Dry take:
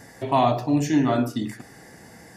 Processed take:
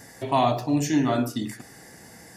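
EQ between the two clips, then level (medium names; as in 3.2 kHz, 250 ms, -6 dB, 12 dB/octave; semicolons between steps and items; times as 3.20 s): treble shelf 3.9 kHz +7 dB; -2.0 dB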